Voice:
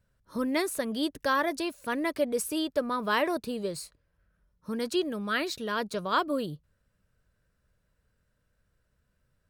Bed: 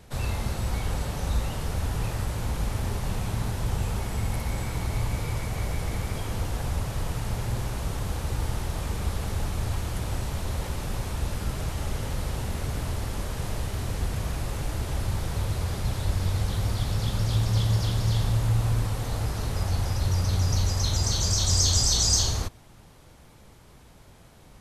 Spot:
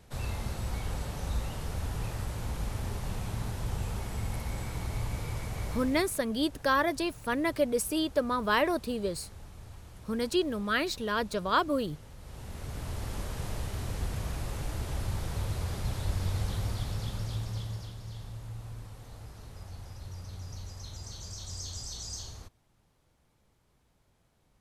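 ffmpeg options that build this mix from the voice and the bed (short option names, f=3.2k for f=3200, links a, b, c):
-filter_complex "[0:a]adelay=5400,volume=0.5dB[a];[1:a]volume=8dB,afade=t=out:st=5.69:d=0.46:silence=0.223872,afade=t=in:st=12.19:d=0.94:silence=0.199526,afade=t=out:st=16.48:d=1.48:silence=0.223872[b];[a][b]amix=inputs=2:normalize=0"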